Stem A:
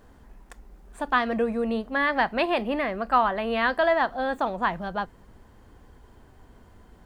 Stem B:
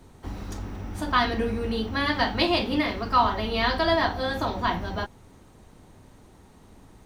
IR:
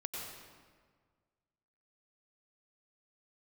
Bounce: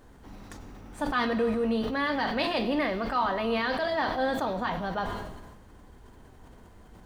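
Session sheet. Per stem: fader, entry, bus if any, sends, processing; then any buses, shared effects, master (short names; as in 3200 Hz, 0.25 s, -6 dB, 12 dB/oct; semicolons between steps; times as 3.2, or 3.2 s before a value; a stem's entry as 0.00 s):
-1.0 dB, 0.00 s, no send, limiter -20.5 dBFS, peak gain reduction 12 dB
-13.0 dB, 0.00 s, send -4.5 dB, HPF 110 Hz 24 dB/oct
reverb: on, RT60 1.7 s, pre-delay 86 ms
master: sustainer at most 38 dB/s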